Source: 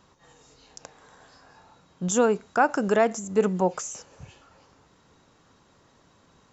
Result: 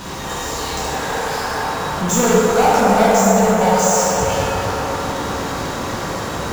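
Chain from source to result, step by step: 2.33–3.91 s: static phaser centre 830 Hz, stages 4; power-law waveshaper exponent 0.35; on a send: feedback echo behind a band-pass 253 ms, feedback 70%, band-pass 790 Hz, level -4 dB; on the sum: plate-style reverb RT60 2.7 s, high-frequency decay 0.55×, DRR -7.5 dB; trim -6 dB

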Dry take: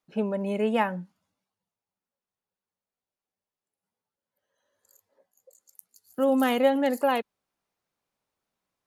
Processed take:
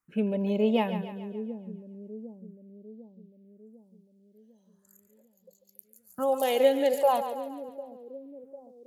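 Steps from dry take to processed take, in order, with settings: phase shifter stages 4, 0.41 Hz, lowest notch 180–1700 Hz; two-band feedback delay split 470 Hz, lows 750 ms, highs 141 ms, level -10 dB; trim +1.5 dB

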